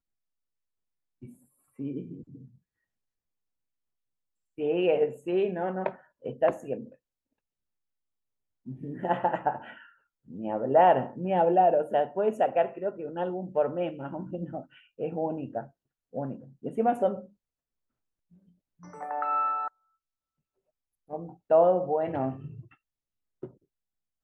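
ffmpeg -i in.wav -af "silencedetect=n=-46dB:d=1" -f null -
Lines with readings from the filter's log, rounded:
silence_start: 0.00
silence_end: 1.22 | silence_duration: 1.22
silence_start: 2.48
silence_end: 4.58 | silence_duration: 2.11
silence_start: 6.93
silence_end: 8.67 | silence_duration: 1.74
silence_start: 17.26
silence_end: 18.83 | silence_duration: 1.57
silence_start: 19.68
silence_end: 21.10 | silence_duration: 1.42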